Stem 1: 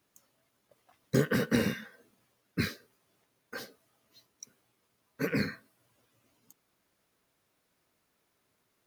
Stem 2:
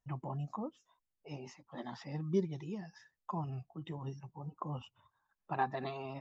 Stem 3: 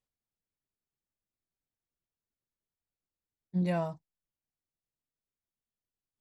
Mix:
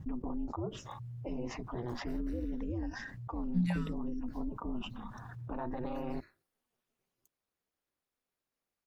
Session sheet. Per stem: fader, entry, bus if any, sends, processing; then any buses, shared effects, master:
-12.5 dB, 0.75 s, bus A, no send, compression 3:1, threshold -36 dBFS, peak gain reduction 12 dB; auto duck -21 dB, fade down 1.20 s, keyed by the third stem
-7.5 dB, 0.00 s, bus A, no send, tilt EQ -4 dB/octave; level flattener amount 70%
-0.5 dB, 0.00 s, no bus, no send, elliptic band-stop 220–1300 Hz
bus A: 0.0 dB, ring modulator 120 Hz; peak limiter -28.5 dBFS, peak gain reduction 7 dB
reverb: none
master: none

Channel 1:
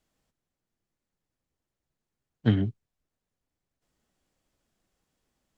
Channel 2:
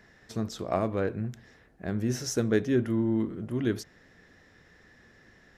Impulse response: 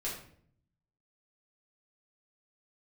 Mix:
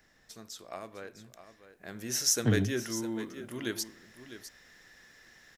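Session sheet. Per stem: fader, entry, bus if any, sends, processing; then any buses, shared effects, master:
-2.0 dB, 0.00 s, no send, no echo send, three bands compressed up and down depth 40%
1.52 s -12 dB -> 2.17 s -2.5 dB, 0.00 s, send -23.5 dB, echo send -12 dB, tilt EQ +4 dB/octave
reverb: on, RT60 0.60 s, pre-delay 4 ms
echo: delay 654 ms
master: none

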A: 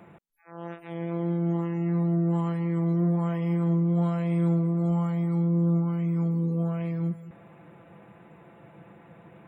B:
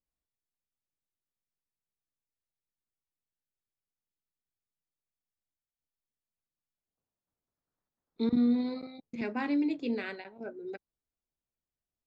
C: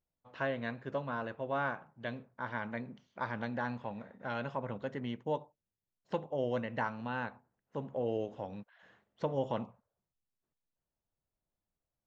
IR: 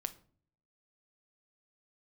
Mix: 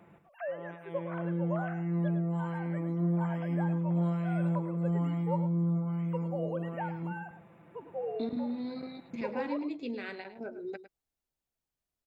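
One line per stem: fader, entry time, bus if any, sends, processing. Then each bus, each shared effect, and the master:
-7.0 dB, 0.00 s, no send, echo send -8 dB, none
+2.0 dB, 0.00 s, no send, echo send -13 dB, compression 3:1, threshold -38 dBFS, peak gain reduction 11 dB
-8.0 dB, 0.00 s, no send, echo send -11.5 dB, formants replaced by sine waves; peaking EQ 760 Hz +7.5 dB 1.2 oct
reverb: none
echo: delay 105 ms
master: none

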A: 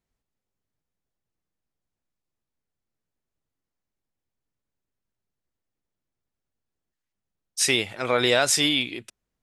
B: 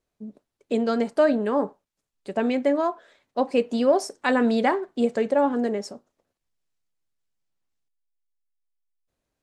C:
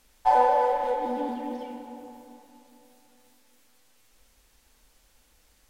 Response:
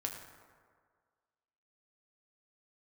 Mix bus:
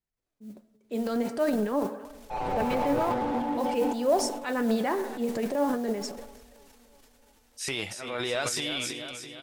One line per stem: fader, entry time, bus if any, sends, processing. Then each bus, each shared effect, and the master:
-6.0 dB, 0.00 s, no send, echo send -9.5 dB, none
-4.0 dB, 0.20 s, send -11.5 dB, echo send -23 dB, modulation noise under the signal 24 dB; vibrato 5.3 Hz 5.1 cents
+2.0 dB, 2.05 s, send -3 dB, no echo send, peaking EQ 890 Hz +4 dB 0.32 oct; slew-rate limiter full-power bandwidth 21 Hz; auto duck -15 dB, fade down 0.90 s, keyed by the first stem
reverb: on, RT60 1.8 s, pre-delay 5 ms
echo: feedback delay 333 ms, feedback 59%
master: transient shaper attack -5 dB, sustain +10 dB; flange 0.47 Hz, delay 0.4 ms, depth 9.1 ms, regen +71%

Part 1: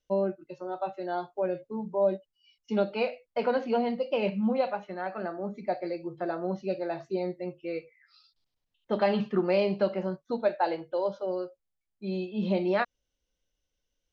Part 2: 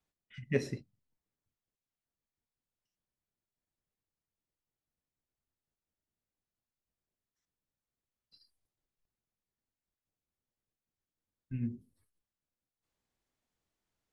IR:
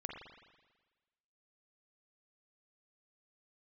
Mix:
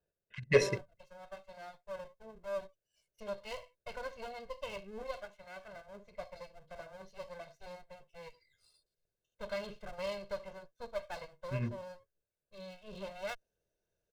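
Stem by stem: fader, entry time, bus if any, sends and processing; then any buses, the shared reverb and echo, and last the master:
-16.0 dB, 0.50 s, no send, comb filter that takes the minimum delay 1.4 ms; treble shelf 3.3 kHz +10.5 dB
+1.0 dB, 0.00 s, no send, local Wiener filter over 41 samples; overdrive pedal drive 17 dB, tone 5.2 kHz, clips at -15 dBFS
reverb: none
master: comb 1.9 ms, depth 69%

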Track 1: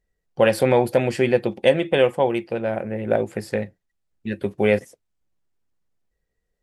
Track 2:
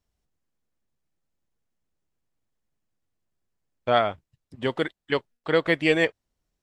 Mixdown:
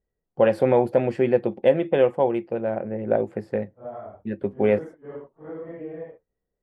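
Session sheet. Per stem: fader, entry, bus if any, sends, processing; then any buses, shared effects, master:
-0.5 dB, 0.00 s, no send, high-pass 490 Hz 6 dB/octave; tilt EQ -3 dB/octave
-6.5 dB, 0.00 s, no send, phase randomisation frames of 200 ms; low-pass 1 kHz 12 dB/octave; compression 4:1, threshold -26 dBFS, peak gain reduction 8.5 dB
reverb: none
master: treble shelf 2.4 kHz -10 dB; tape noise reduction on one side only decoder only

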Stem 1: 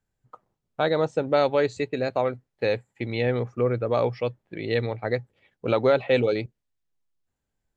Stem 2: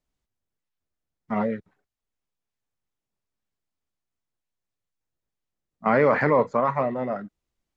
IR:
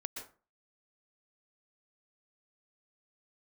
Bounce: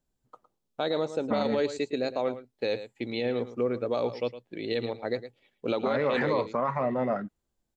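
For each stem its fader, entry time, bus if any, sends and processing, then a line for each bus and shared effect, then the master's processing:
-12.0 dB, 0.00 s, no send, echo send -14 dB, FFT filter 130 Hz 0 dB, 240 Hz +11 dB, 1.9 kHz +5 dB, 3.6 kHz +13 dB
+1.5 dB, 0.00 s, no send, no echo send, compression 2:1, threshold -25 dBFS, peak gain reduction 6 dB; level-controlled noise filter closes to 750 Hz, open at -23 dBFS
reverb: none
echo: delay 110 ms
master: peak limiter -18 dBFS, peak gain reduction 11 dB

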